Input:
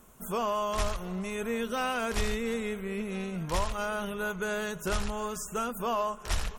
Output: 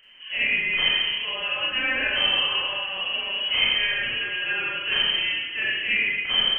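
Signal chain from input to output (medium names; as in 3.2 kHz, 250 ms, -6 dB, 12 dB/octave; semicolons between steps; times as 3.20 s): frequency inversion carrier 3.1 kHz; Schroeder reverb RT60 1.1 s, combs from 29 ms, DRR -6 dB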